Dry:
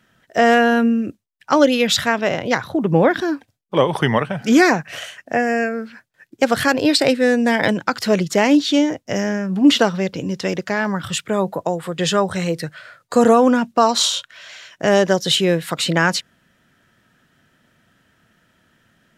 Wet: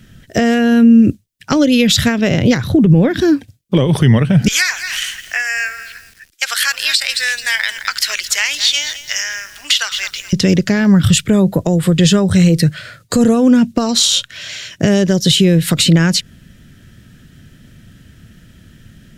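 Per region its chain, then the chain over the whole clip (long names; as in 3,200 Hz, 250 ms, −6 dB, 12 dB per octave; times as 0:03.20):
0:04.48–0:10.33: high-pass filter 1,200 Hz 24 dB per octave + feedback echo at a low word length 215 ms, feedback 35%, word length 7 bits, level −14 dB
whole clip: downward compressor 6 to 1, threshold −20 dBFS; guitar amp tone stack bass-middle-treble 10-0-1; boost into a limiter +35.5 dB; level −1 dB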